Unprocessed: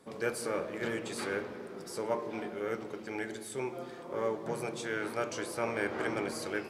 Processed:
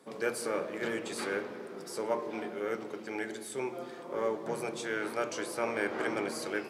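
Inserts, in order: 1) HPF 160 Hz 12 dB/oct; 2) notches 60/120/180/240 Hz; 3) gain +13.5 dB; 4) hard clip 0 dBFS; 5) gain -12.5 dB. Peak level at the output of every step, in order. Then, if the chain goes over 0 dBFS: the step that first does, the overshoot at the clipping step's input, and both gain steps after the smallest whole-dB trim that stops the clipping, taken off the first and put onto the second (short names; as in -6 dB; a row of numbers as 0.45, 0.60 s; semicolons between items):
-18.5, -18.5, -5.0, -5.0, -17.5 dBFS; no overload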